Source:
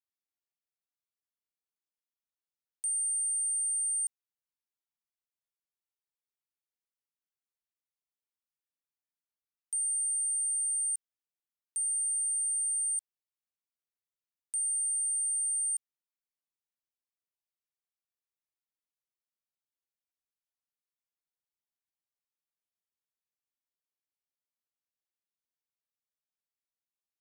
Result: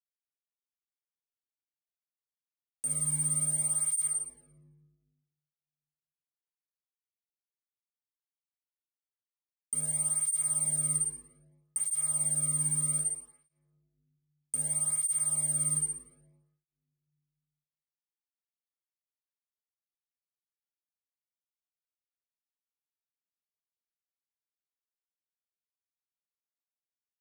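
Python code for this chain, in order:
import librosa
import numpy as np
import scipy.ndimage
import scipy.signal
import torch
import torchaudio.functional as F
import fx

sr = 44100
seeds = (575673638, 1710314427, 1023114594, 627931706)

y = fx.peak_eq(x, sr, hz=8500.0, db=7.0, octaves=0.38)
y = fx.quant_dither(y, sr, seeds[0], bits=6, dither='none')
y = fx.room_shoebox(y, sr, seeds[1], volume_m3=780.0, walls='mixed', distance_m=2.0)
y = fx.flanger_cancel(y, sr, hz=0.63, depth_ms=1.6)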